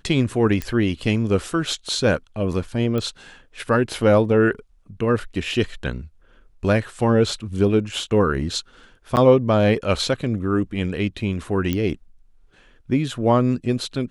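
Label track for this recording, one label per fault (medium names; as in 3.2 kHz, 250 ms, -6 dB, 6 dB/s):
0.620000	0.620000	pop -11 dBFS
2.980000	2.980000	pop -14 dBFS
9.160000	9.170000	dropout 9 ms
11.730000	11.730000	pop -10 dBFS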